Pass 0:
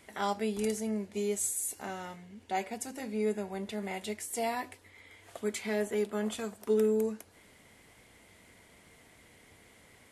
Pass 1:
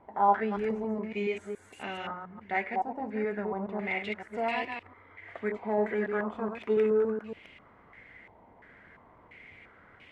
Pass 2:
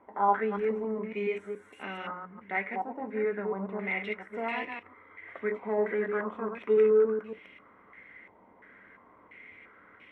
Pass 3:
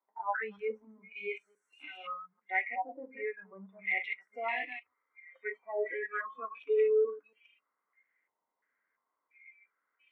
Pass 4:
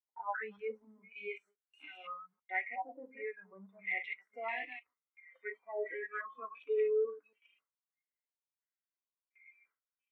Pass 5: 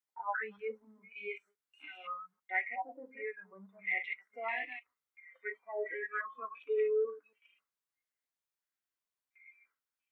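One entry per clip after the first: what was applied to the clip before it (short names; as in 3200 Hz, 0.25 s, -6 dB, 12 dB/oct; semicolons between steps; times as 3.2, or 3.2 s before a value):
reverse delay 0.141 s, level -5.5 dB; stepped low-pass 2.9 Hz 890–2700 Hz
reverb RT60 0.15 s, pre-delay 3 ms, DRR 12.5 dB; gain -7 dB
spectral noise reduction 29 dB; band-pass 1300 Hz, Q 0.86; gain +3.5 dB
gate with hold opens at -57 dBFS; wow and flutter 20 cents; gain -4.5 dB
bell 1500 Hz +4 dB 1.1 oct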